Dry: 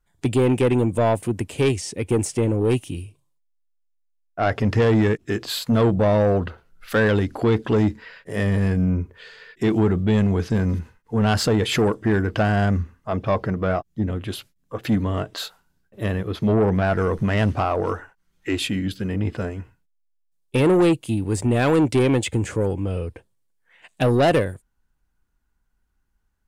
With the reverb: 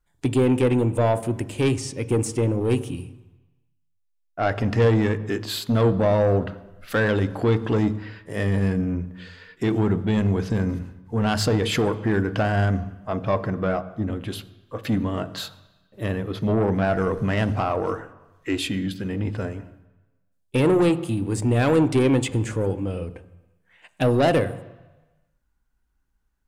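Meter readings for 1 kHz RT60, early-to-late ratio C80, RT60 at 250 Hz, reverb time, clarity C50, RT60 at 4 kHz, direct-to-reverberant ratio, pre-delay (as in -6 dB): 1.1 s, 17.5 dB, 0.95 s, 1.1 s, 16.0 dB, 1.1 s, 12.0 dB, 3 ms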